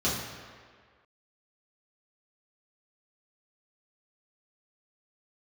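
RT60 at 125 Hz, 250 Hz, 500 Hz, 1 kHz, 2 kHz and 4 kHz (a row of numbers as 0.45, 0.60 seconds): 1.4, 1.6, 1.8, 1.8, 1.8, 1.3 seconds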